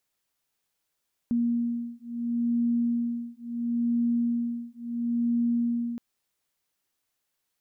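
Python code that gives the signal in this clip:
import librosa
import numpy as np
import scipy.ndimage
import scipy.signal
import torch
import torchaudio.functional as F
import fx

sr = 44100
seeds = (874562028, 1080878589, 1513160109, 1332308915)

y = fx.two_tone_beats(sr, length_s=4.67, hz=236.0, beat_hz=0.73, level_db=-27.5)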